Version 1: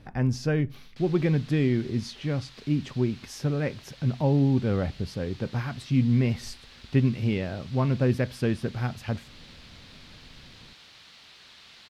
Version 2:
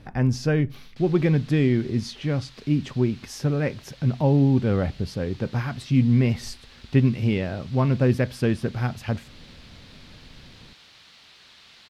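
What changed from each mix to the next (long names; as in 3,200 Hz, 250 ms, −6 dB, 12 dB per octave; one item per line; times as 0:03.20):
speech +3.5 dB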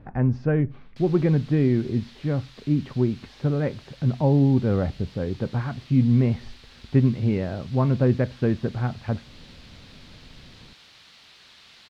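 speech: add low-pass filter 1,500 Hz 12 dB per octave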